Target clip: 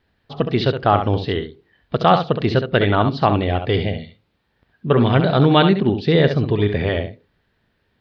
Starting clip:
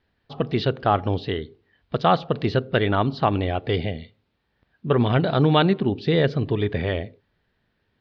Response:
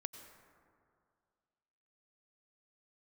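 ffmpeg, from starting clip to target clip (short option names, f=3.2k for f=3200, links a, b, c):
-filter_complex "[0:a]asplit=2[a][b];[1:a]atrim=start_sample=2205,atrim=end_sample=3528,adelay=68[c];[b][c]afir=irnorm=-1:irlink=0,volume=-4.5dB[d];[a][d]amix=inputs=2:normalize=0,volume=4dB"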